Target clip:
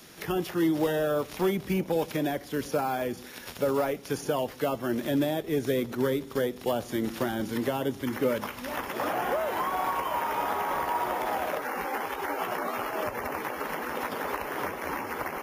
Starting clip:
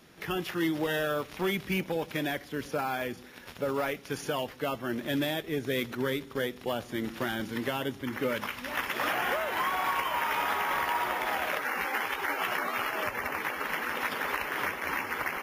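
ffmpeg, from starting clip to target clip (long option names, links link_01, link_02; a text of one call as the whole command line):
ffmpeg -i in.wav -filter_complex "[0:a]bass=frequency=250:gain=-2,treble=frequency=4000:gain=8,acrossover=split=540|1000[link_01][link_02][link_03];[link_03]acompressor=threshold=-44dB:ratio=6[link_04];[link_01][link_02][link_04]amix=inputs=3:normalize=0,volume=5dB" out.wav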